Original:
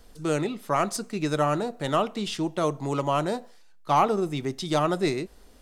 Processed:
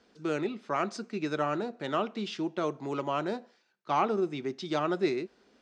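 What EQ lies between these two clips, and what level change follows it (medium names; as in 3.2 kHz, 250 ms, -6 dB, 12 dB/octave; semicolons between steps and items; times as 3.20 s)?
cabinet simulation 170–6000 Hz, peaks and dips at 220 Hz +5 dB, 370 Hz +6 dB, 1.5 kHz +5 dB, 2.4 kHz +4 dB; -7.0 dB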